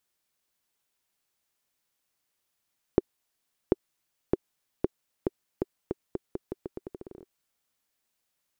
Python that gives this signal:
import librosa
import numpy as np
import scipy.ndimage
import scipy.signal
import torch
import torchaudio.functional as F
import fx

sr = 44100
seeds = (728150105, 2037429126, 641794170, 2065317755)

y = fx.bouncing_ball(sr, first_gap_s=0.74, ratio=0.83, hz=376.0, decay_ms=27.0, level_db=-6.5)